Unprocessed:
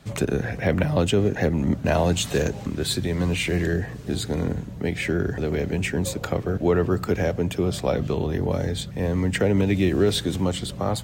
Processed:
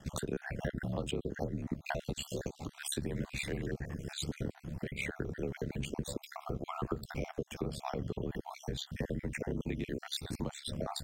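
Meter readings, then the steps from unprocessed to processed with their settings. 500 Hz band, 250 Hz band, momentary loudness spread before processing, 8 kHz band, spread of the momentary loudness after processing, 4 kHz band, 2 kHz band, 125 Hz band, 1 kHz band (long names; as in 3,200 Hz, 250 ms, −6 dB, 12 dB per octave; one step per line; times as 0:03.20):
−16.5 dB, −15.5 dB, 6 LU, −11.5 dB, 4 LU, −12.0 dB, −13.0 dB, −15.5 dB, −12.0 dB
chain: time-frequency cells dropped at random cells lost 46%
downward compressor 6 to 1, threshold −31 dBFS, peak gain reduction 14.5 dB
ring modulation 35 Hz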